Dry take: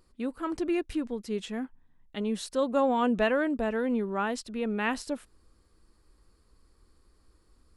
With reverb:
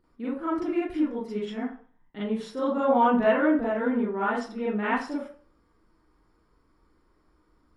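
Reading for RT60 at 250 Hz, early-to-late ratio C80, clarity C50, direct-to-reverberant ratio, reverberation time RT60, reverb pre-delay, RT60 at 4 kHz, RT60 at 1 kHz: 0.40 s, 8.5 dB, 2.5 dB, -10.0 dB, 0.45 s, 38 ms, 0.40 s, 0.45 s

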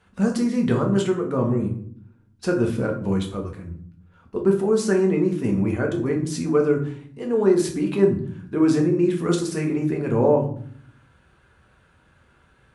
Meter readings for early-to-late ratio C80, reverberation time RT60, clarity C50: 13.0 dB, 0.60 s, 9.0 dB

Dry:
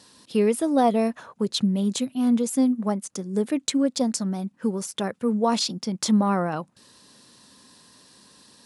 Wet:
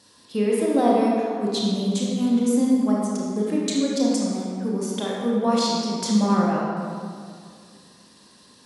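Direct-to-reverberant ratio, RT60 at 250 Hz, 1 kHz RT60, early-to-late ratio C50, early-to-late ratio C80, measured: -4.0 dB, 2.4 s, 2.2 s, -1.5 dB, 0.0 dB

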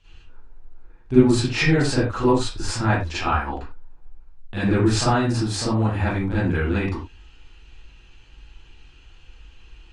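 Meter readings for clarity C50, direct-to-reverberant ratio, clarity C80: -2.5 dB, -12.0 dB, 5.0 dB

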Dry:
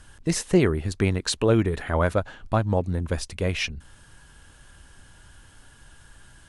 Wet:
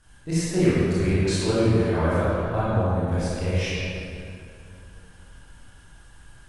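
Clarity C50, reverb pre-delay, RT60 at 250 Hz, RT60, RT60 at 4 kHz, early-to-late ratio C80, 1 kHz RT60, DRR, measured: -5.5 dB, 20 ms, 3.0 s, 2.6 s, 1.6 s, -3.0 dB, 2.5 s, -11.5 dB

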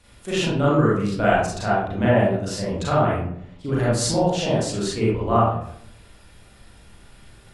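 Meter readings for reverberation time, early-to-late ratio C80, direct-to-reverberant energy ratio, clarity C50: 0.65 s, 4.0 dB, -8.0 dB, -1.0 dB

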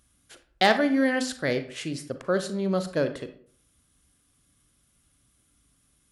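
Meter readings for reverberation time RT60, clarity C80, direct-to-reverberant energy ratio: 0.55 s, 15.5 dB, 9.0 dB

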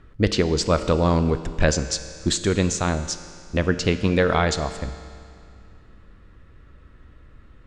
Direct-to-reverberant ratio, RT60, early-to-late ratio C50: 10.0 dB, 2.3 s, 11.5 dB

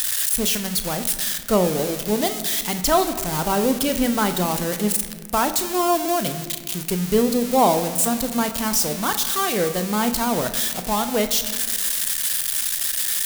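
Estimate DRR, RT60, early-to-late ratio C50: 8.0 dB, 1.6 s, 11.0 dB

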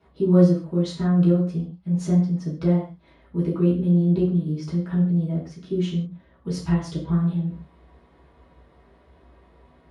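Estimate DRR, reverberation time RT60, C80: -8.0 dB, not exponential, 10.5 dB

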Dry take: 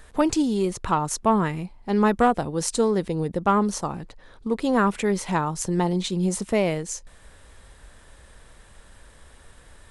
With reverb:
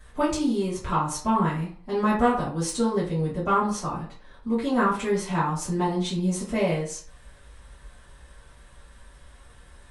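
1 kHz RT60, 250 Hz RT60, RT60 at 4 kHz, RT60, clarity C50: 0.45 s, 0.45 s, 0.30 s, 0.45 s, 6.0 dB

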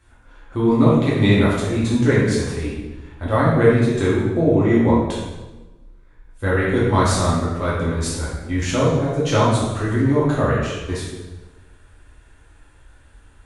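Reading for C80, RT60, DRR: 3.0 dB, 1.2 s, -8.5 dB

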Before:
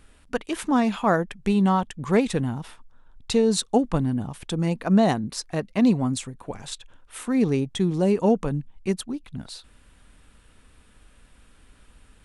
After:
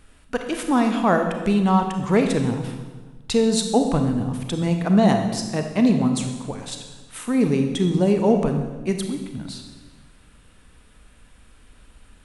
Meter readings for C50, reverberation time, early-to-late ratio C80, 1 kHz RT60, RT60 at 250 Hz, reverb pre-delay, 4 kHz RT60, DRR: 6.0 dB, 1.3 s, 8.0 dB, 1.3 s, 1.5 s, 29 ms, 1.2 s, 5.0 dB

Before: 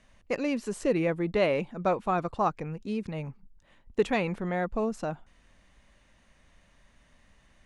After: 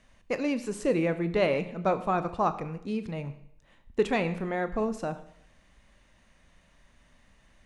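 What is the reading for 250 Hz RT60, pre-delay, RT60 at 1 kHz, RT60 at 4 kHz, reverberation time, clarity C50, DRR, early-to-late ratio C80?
0.70 s, 28 ms, 0.70 s, 0.75 s, 0.70 s, 14.0 dB, 11.0 dB, 16.0 dB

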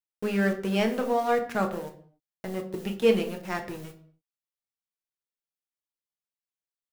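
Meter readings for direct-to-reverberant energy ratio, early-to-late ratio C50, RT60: 3.5 dB, 11.0 dB, not exponential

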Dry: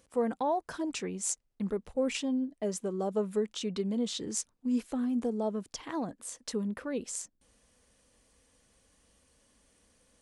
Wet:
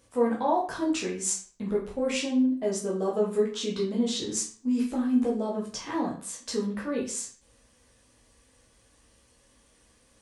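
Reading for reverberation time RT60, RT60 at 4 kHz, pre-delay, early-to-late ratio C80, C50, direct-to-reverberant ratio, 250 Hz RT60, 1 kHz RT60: 0.45 s, 0.40 s, 10 ms, 12.0 dB, 7.0 dB, -4.5 dB, 0.45 s, 0.45 s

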